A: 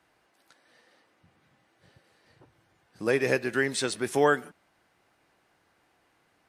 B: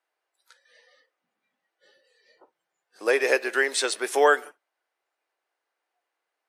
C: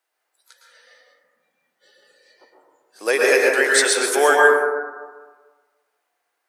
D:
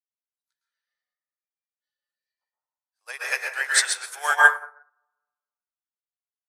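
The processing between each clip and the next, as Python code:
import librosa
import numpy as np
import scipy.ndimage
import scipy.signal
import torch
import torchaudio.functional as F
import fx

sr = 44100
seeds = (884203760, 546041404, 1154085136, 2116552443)

y1 = fx.noise_reduce_blind(x, sr, reduce_db=19)
y1 = scipy.signal.sosfilt(scipy.signal.butter(4, 410.0, 'highpass', fs=sr, output='sos'), y1)
y1 = y1 * librosa.db_to_amplitude(5.0)
y2 = fx.high_shelf(y1, sr, hz=4600.0, db=10.0)
y2 = fx.rev_plate(y2, sr, seeds[0], rt60_s=1.4, hf_ratio=0.25, predelay_ms=100, drr_db=-2.5)
y2 = y2 * librosa.db_to_amplitude(1.5)
y3 = scipy.signal.sosfilt(scipy.signal.butter(4, 800.0, 'highpass', fs=sr, output='sos'), y2)
y3 = fx.upward_expand(y3, sr, threshold_db=-37.0, expansion=2.5)
y3 = y3 * librosa.db_to_amplitude(3.0)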